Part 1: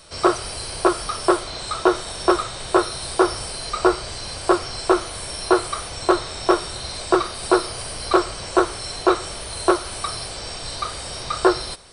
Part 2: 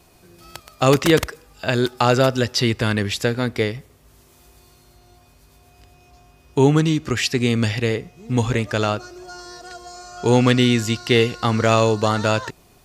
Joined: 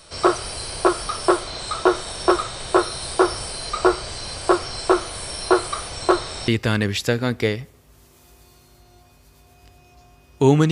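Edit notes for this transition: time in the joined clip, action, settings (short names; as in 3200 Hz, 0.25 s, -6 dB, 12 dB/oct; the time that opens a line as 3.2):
part 1
6.48 switch to part 2 from 2.64 s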